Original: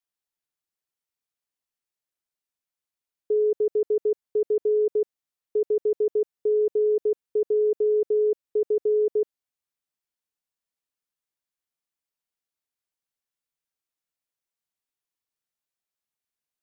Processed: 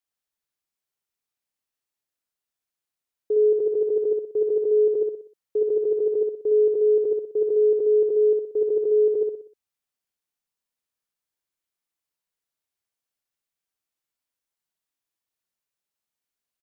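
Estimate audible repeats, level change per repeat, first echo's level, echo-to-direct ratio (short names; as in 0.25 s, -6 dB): 5, -7.5 dB, -3.5 dB, -2.5 dB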